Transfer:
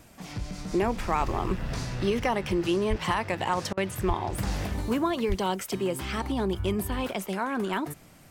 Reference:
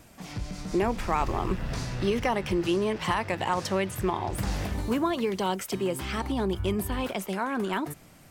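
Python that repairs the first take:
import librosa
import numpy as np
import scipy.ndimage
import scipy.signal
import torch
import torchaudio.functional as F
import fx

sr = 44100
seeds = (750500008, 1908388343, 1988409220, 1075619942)

y = fx.fix_deplosive(x, sr, at_s=(2.89, 4.07, 5.28))
y = fx.fix_interpolate(y, sr, at_s=(3.73,), length_ms=42.0)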